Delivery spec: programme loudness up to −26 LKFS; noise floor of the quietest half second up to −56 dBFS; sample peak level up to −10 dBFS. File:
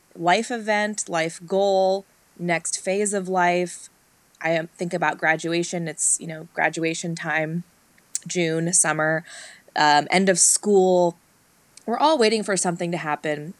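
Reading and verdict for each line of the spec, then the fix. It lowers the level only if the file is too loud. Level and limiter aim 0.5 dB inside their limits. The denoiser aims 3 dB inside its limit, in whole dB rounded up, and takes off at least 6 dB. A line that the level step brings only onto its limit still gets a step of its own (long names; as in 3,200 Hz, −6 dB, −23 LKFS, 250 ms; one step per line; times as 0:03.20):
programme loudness −21.5 LKFS: out of spec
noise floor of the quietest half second −59 dBFS: in spec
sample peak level −5.5 dBFS: out of spec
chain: level −5 dB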